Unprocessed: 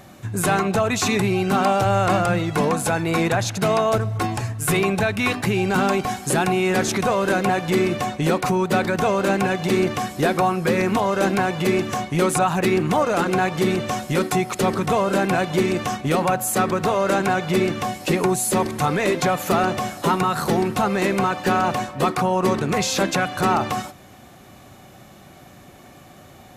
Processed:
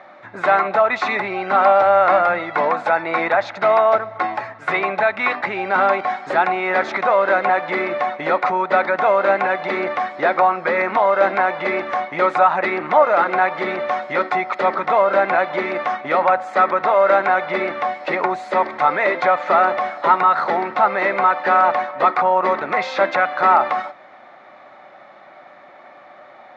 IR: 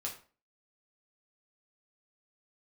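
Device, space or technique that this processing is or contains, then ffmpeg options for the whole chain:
phone earpiece: -af "highpass=420,equalizer=frequency=430:width_type=q:width=4:gain=-4,equalizer=frequency=600:width_type=q:width=4:gain=9,equalizer=frequency=880:width_type=q:width=4:gain=7,equalizer=frequency=1300:width_type=q:width=4:gain=8,equalizer=frequency=2000:width_type=q:width=4:gain=9,equalizer=frequency=2900:width_type=q:width=4:gain=-8,lowpass=frequency=3600:width=0.5412,lowpass=frequency=3600:width=1.3066"

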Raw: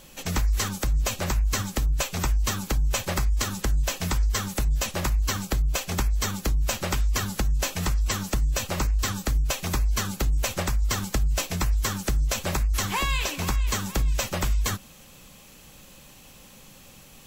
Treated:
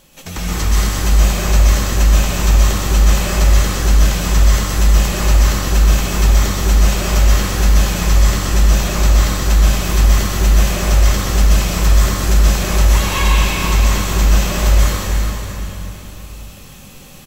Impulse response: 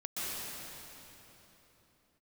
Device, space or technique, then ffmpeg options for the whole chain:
cave: -filter_complex "[0:a]aecho=1:1:333:0.299[link_01];[1:a]atrim=start_sample=2205[link_02];[link_01][link_02]afir=irnorm=-1:irlink=0,volume=4.5dB"

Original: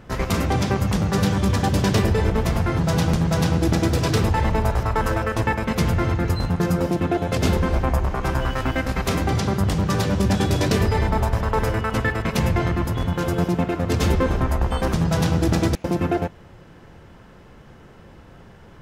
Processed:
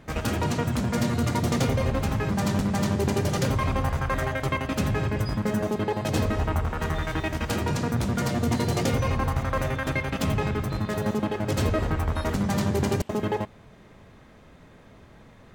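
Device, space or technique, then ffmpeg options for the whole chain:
nightcore: -af "asetrate=53361,aresample=44100,volume=-5dB"

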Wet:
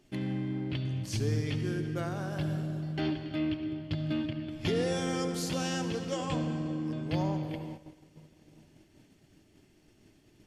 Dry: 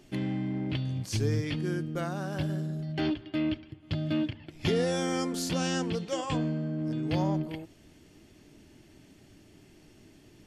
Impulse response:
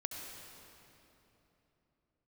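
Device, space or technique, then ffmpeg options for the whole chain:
keyed gated reverb: -filter_complex "[0:a]asplit=3[link_01][link_02][link_03];[1:a]atrim=start_sample=2205[link_04];[link_02][link_04]afir=irnorm=-1:irlink=0[link_05];[link_03]apad=whole_len=461545[link_06];[link_05][link_06]sidechaingate=range=-33dB:threshold=-53dB:ratio=16:detection=peak,volume=2dB[link_07];[link_01][link_07]amix=inputs=2:normalize=0,volume=-8.5dB"

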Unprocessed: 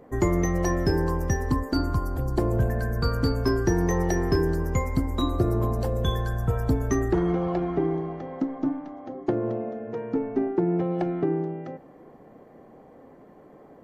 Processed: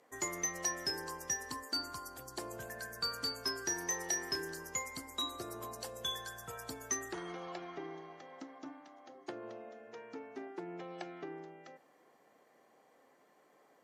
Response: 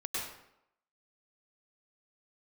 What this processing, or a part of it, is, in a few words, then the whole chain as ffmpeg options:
piezo pickup straight into a mixer: -filter_complex "[0:a]asettb=1/sr,asplit=3[link_01][link_02][link_03];[link_01]atrim=end=3.604[link_04];[link_02]atrim=start=3.6:end=4.66,asetpts=PTS-STARTPTS,afade=type=in:duration=0.004:curve=qsin,afade=type=out:start_time=1.056:duration=0.004:curve=qsin,asplit=2[link_05][link_06];[link_06]adelay=31,volume=-11dB[link_07];[link_05][link_07]amix=inputs=2:normalize=0,atrim=end_sample=46746[link_08];[link_03]atrim=start=4.656[link_09];[link_04][link_08]acrossfade=duration=0.004:curve1=hsin:curve2=qsin[link_10];[link_10][link_09]acrossfade=duration=0.004:curve1=qsin:curve2=hsin,lowpass=8200,aderivative,volume=5.5dB"

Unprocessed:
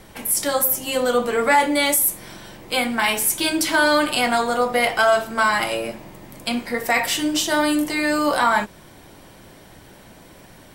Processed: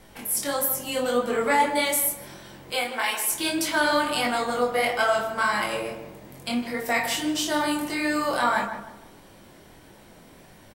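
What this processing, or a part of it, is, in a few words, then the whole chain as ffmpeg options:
double-tracked vocal: -filter_complex "[0:a]asettb=1/sr,asplit=3[link_01][link_02][link_03];[link_01]atrim=end=2.724[link_04];[link_02]atrim=start=2.72:end=3.32,asetpts=PTS-STARTPTS,afade=type=in:duration=0.004:curve=qsin,afade=type=out:start_time=0.596:duration=0.004:curve=qsin,highpass=frequency=330:width=0.5412,highpass=frequency=330:width=1.3066[link_05];[link_03]atrim=start=3.316[link_06];[link_04][link_05]acrossfade=duration=0.004:curve1=hsin:curve2=qsin[link_07];[link_07][link_06]acrossfade=duration=0.004:curve1=qsin:curve2=hsin,asplit=2[link_08][link_09];[link_09]adelay=29,volume=-11dB[link_10];[link_08][link_10]amix=inputs=2:normalize=0,flanger=delay=19.5:depth=5.3:speed=1.6,asplit=2[link_11][link_12];[link_12]adelay=155,lowpass=frequency=1600:poles=1,volume=-8dB,asplit=2[link_13][link_14];[link_14]adelay=155,lowpass=frequency=1600:poles=1,volume=0.38,asplit=2[link_15][link_16];[link_16]adelay=155,lowpass=frequency=1600:poles=1,volume=0.38,asplit=2[link_17][link_18];[link_18]adelay=155,lowpass=frequency=1600:poles=1,volume=0.38[link_19];[link_11][link_13][link_15][link_17][link_19]amix=inputs=5:normalize=0,volume=-2.5dB"

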